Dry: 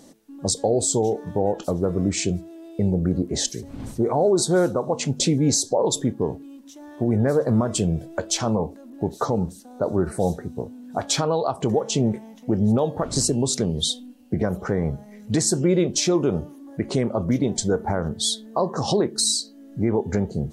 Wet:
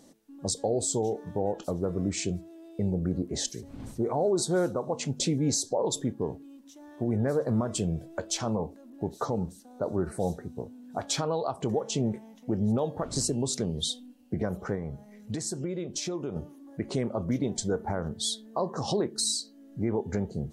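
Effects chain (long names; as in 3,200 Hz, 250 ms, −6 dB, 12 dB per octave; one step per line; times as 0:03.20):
0:14.74–0:16.36: downward compressor 6 to 1, threshold −23 dBFS, peak gain reduction 8.5 dB
level −7 dB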